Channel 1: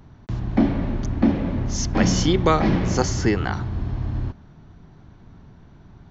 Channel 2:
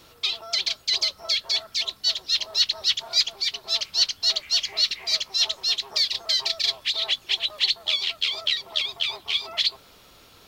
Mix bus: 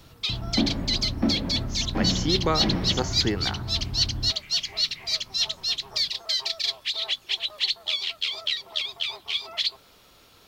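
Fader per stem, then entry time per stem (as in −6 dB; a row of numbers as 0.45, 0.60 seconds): −6.0, −3.0 decibels; 0.00, 0.00 seconds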